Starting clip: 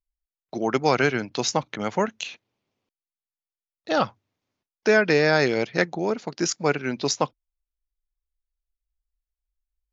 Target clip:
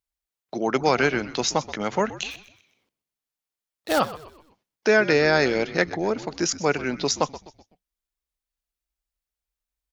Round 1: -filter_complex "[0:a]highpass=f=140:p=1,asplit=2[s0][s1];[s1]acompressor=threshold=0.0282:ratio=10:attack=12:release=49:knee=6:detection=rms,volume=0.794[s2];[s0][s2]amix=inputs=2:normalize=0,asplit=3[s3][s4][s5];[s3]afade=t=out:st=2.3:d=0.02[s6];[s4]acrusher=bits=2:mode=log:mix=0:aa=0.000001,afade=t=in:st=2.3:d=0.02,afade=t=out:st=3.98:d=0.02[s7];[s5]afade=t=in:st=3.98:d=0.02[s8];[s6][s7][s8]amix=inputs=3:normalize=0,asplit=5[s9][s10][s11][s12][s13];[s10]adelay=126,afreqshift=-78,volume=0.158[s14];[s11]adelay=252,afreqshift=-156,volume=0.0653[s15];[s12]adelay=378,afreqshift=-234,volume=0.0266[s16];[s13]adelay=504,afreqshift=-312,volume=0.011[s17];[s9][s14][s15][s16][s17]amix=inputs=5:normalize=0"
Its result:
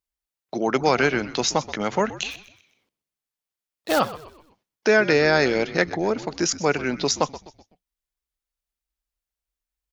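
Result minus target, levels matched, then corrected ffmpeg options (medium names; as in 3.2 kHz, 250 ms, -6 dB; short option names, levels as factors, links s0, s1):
compression: peak gain reduction -9.5 dB
-filter_complex "[0:a]highpass=f=140:p=1,asplit=2[s0][s1];[s1]acompressor=threshold=0.00841:ratio=10:attack=12:release=49:knee=6:detection=rms,volume=0.794[s2];[s0][s2]amix=inputs=2:normalize=0,asplit=3[s3][s4][s5];[s3]afade=t=out:st=2.3:d=0.02[s6];[s4]acrusher=bits=2:mode=log:mix=0:aa=0.000001,afade=t=in:st=2.3:d=0.02,afade=t=out:st=3.98:d=0.02[s7];[s5]afade=t=in:st=3.98:d=0.02[s8];[s6][s7][s8]amix=inputs=3:normalize=0,asplit=5[s9][s10][s11][s12][s13];[s10]adelay=126,afreqshift=-78,volume=0.158[s14];[s11]adelay=252,afreqshift=-156,volume=0.0653[s15];[s12]adelay=378,afreqshift=-234,volume=0.0266[s16];[s13]adelay=504,afreqshift=-312,volume=0.011[s17];[s9][s14][s15][s16][s17]amix=inputs=5:normalize=0"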